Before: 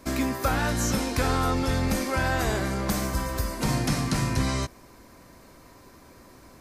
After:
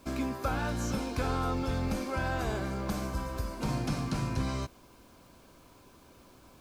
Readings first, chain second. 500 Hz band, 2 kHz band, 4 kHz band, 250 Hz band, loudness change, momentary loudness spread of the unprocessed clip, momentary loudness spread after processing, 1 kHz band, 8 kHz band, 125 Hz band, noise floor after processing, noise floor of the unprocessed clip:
-6.0 dB, -8.5 dB, -9.5 dB, -6.0 dB, -7.0 dB, 4 LU, 4 LU, -6.5 dB, -12.5 dB, -6.0 dB, -58 dBFS, -52 dBFS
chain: added noise white -53 dBFS; high shelf 5300 Hz -10 dB; notch 1900 Hz, Q 5.4; gain -6 dB

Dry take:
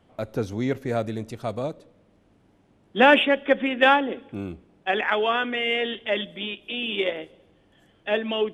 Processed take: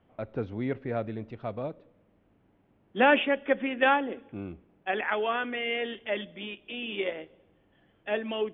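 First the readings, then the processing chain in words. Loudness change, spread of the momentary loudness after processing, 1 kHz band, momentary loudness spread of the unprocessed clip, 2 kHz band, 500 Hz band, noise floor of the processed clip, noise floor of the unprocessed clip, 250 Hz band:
-6.0 dB, 16 LU, -5.5 dB, 15 LU, -6.0 dB, -5.5 dB, -67 dBFS, -61 dBFS, -5.5 dB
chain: LPF 3000 Hz 24 dB/oct; gain -5.5 dB

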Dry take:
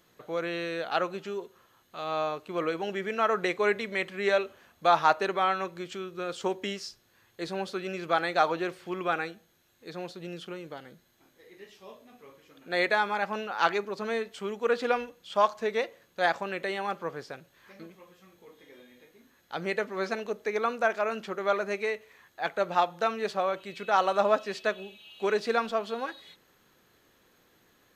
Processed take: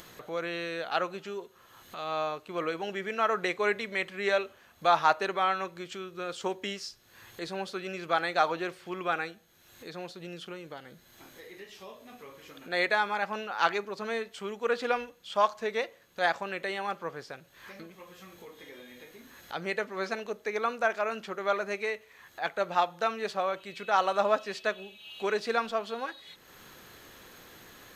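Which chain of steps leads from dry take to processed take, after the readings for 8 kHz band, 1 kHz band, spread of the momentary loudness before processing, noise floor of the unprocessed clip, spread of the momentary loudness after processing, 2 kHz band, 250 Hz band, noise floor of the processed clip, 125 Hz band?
+0.5 dB, -1.0 dB, 14 LU, -66 dBFS, 21 LU, -0.5 dB, -3.0 dB, -59 dBFS, -3.0 dB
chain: upward compressor, threshold -37 dBFS; bell 270 Hz -3.5 dB 2.7 oct

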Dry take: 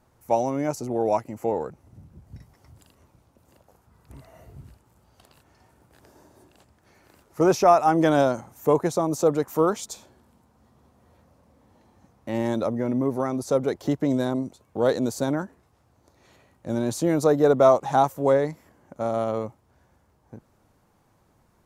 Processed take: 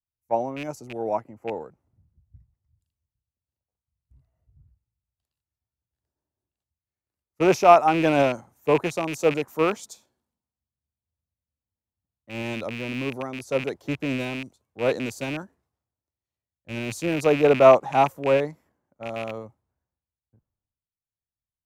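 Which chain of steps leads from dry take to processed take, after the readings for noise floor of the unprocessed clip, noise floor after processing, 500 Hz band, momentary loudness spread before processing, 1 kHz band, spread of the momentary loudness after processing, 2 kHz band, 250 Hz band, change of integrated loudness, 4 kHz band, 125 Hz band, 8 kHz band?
-64 dBFS, under -85 dBFS, 0.0 dB, 14 LU, +1.0 dB, 19 LU, +6.0 dB, -3.0 dB, +0.5 dB, +3.5 dB, -2.5 dB, -4.0 dB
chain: rattling part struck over -31 dBFS, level -17 dBFS; three-band expander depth 100%; gain -5 dB

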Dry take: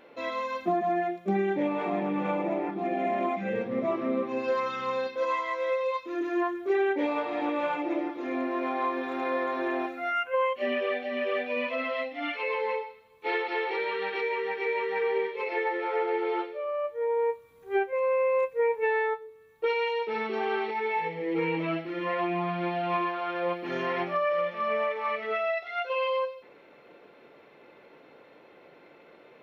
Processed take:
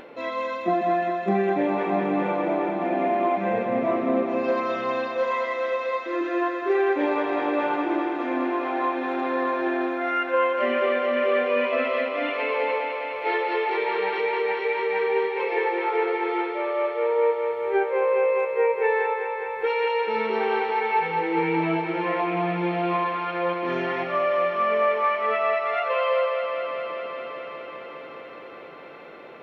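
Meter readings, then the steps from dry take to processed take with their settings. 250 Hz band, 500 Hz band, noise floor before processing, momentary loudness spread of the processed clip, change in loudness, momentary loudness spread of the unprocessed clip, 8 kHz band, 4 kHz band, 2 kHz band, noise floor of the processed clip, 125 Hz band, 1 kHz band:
+4.5 dB, +5.0 dB, -55 dBFS, 7 LU, +5.0 dB, 5 LU, n/a, +3.5 dB, +4.5 dB, -39 dBFS, +4.5 dB, +5.5 dB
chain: upward compressor, threshold -41 dBFS; high shelf 4600 Hz -8.5 dB; thinning echo 0.206 s, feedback 85%, high-pass 210 Hz, level -6.5 dB; gain +3.5 dB

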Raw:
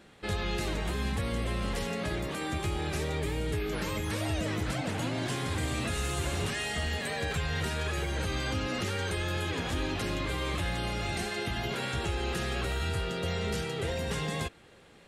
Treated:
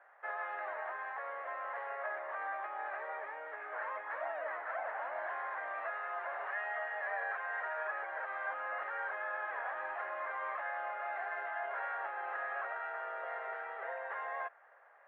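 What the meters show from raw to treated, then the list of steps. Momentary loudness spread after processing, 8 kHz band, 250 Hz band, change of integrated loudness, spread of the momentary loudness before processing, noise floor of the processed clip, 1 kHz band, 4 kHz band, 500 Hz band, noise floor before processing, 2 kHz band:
4 LU, under -40 dB, under -30 dB, -7.0 dB, 1 LU, -61 dBFS, +0.5 dB, under -25 dB, -7.5 dB, -56 dBFS, -2.0 dB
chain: elliptic band-pass 630–1800 Hz, stop band 60 dB; gain +1 dB

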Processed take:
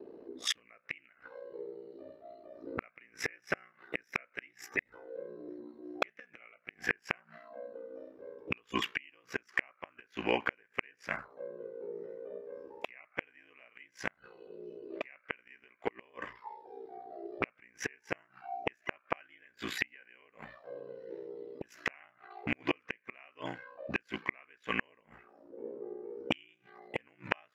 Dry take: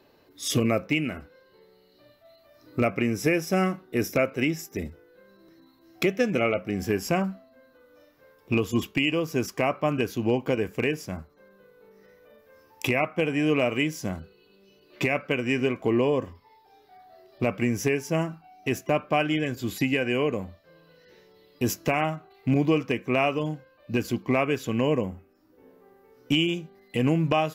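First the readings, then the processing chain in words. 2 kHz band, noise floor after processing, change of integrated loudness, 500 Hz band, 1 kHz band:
-6.5 dB, -72 dBFS, -13.5 dB, -15.0 dB, -11.0 dB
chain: auto-wah 360–1800 Hz, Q 3.2, up, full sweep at -29 dBFS; flipped gate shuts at -32 dBFS, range -36 dB; ring modulator 30 Hz; gain +18 dB

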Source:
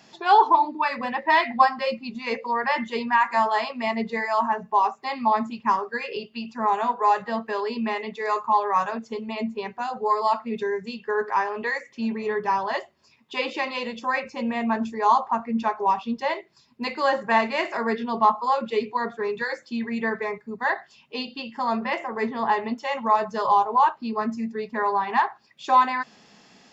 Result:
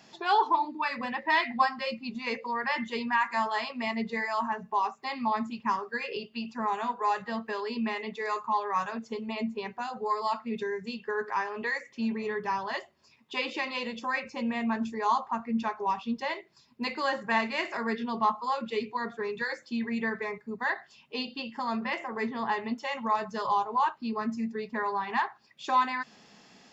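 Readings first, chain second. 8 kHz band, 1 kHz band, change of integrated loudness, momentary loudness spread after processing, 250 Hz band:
n/a, -7.5 dB, -6.5 dB, 8 LU, -3.5 dB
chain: dynamic EQ 640 Hz, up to -7 dB, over -33 dBFS, Q 0.75; gain -2.5 dB

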